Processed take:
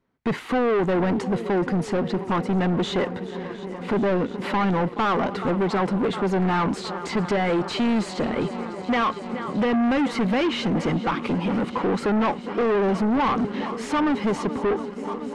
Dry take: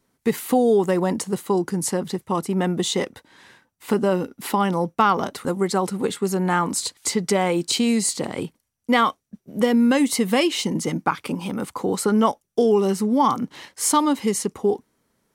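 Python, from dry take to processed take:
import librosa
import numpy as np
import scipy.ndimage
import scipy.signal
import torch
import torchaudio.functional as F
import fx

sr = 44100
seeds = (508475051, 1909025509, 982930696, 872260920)

y = fx.echo_swing(x, sr, ms=711, ratio=1.5, feedback_pct=78, wet_db=-21)
y = fx.leveller(y, sr, passes=2)
y = 10.0 ** (-19.0 / 20.0) * np.tanh(y / 10.0 ** (-19.0 / 20.0))
y = scipy.signal.sosfilt(scipy.signal.butter(2, 2600.0, 'lowpass', fs=sr, output='sos'), y)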